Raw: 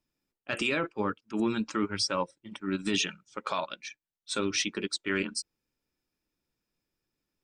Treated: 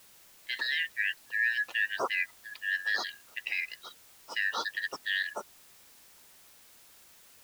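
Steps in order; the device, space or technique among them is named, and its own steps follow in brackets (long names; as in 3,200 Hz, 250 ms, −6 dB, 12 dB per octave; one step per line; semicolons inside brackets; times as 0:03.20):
split-band scrambled radio (band-splitting scrambler in four parts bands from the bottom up 4123; band-pass filter 370–3,000 Hz; white noise bed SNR 22 dB)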